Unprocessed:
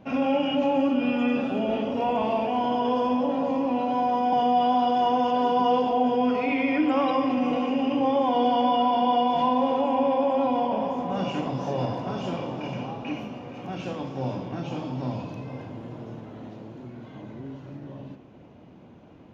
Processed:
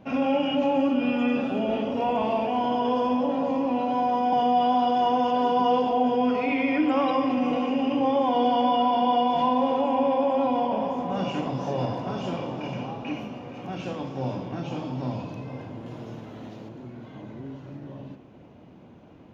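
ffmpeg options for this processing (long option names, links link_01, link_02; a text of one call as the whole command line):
ffmpeg -i in.wav -filter_complex "[0:a]asettb=1/sr,asplit=3[link_01][link_02][link_03];[link_01]atrim=end=15.864[link_04];[link_02]atrim=start=15.86:end=16.69,asetpts=PTS-STARTPTS,afade=type=in:duration=0.004:curve=qsin,afade=type=out:start_time=0.826:duration=0.004:curve=qsin,highshelf=frequency=2400:gain=7.5[link_05];[link_03]atrim=start=16.686[link_06];[link_04][link_05]acrossfade=duration=0.004:curve1=hsin:curve2=qsin[link_07];[link_07][link_06]acrossfade=duration=0.004:curve1=qsin:curve2=hsin" out.wav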